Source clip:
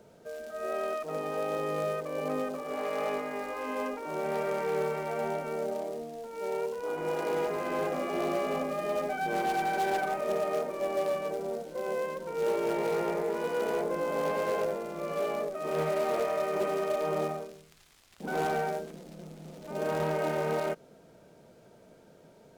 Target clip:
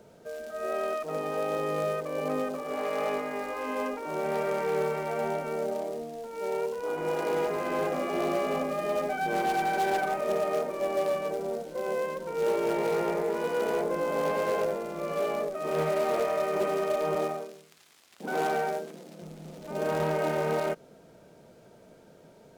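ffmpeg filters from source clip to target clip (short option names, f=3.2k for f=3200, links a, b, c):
-filter_complex "[0:a]asettb=1/sr,asplit=3[a][b][c];[a]atrim=end=17.154[d];[b]atrim=start=17.15:end=19.22,asetpts=PTS-STARTPTS,afade=t=in:d=0.004:c=qsin,afade=t=out:st=2.066:d=0.004:c=qsin,highpass=210[e];[c]atrim=start=19.216[f];[d][e]acrossfade=d=0.004:c1=hsin:c2=qsin[g];[g][f]acrossfade=d=0.004:c1=qsin:c2=hsin,volume=2dB"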